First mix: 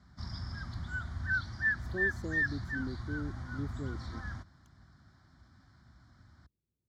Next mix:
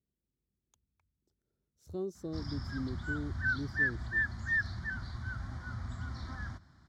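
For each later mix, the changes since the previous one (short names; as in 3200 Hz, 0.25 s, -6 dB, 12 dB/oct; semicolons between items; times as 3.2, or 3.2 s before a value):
background: entry +2.15 s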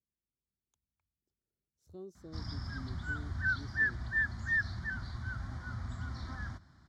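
speech -10.0 dB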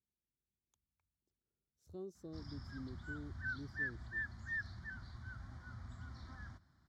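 background -10.0 dB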